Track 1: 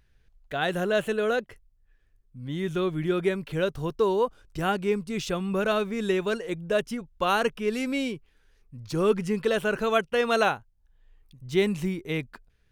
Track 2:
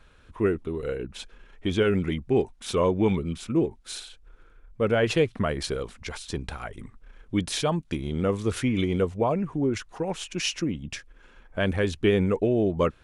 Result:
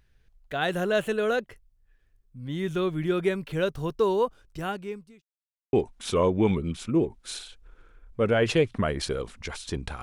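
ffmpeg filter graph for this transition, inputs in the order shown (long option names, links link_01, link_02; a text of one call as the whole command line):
ffmpeg -i cue0.wav -i cue1.wav -filter_complex "[0:a]apad=whole_dur=10.02,atrim=end=10.02,asplit=2[link_01][link_02];[link_01]atrim=end=5.22,asetpts=PTS-STARTPTS,afade=type=out:start_time=4.22:duration=1[link_03];[link_02]atrim=start=5.22:end=5.73,asetpts=PTS-STARTPTS,volume=0[link_04];[1:a]atrim=start=2.34:end=6.63,asetpts=PTS-STARTPTS,afade=type=in:duration=0.004:curve=hsin[link_05];[link_03][link_04][link_05]concat=n=3:v=0:a=1" out.wav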